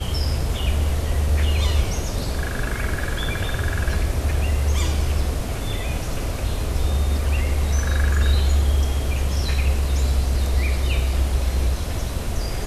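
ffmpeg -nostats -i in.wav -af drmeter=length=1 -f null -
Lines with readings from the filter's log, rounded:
Channel 1: DR: 6.7
Overall DR: 6.7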